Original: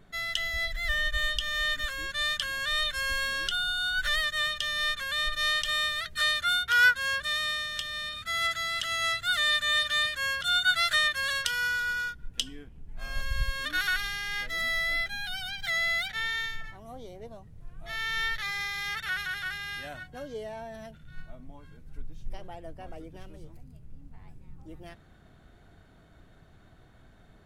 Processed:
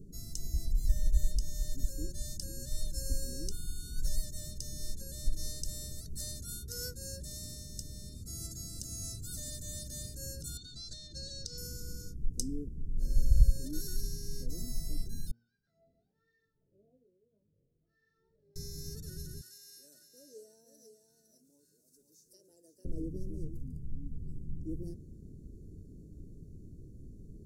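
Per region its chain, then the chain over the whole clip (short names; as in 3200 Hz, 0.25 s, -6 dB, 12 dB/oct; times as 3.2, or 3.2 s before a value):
10.57–11.58 LPF 6700 Hz 24 dB/oct + bell 3900 Hz +13.5 dB 0.51 oct + compressor, threshold -25 dBFS
15.31–18.56 wah 1.2 Hz 550–1800 Hz, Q 5.6 + air absorption 250 m + chorus 1.9 Hz, delay 19.5 ms, depth 2.2 ms
19.41–22.85 HPF 1100 Hz + echo 0.508 s -8 dB + mismatched tape noise reduction encoder only
whole clip: inverse Chebyshev band-stop 720–3400 Hz, stop band 40 dB; high shelf 2200 Hz -7.5 dB; de-hum 116.8 Hz, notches 12; gain +8 dB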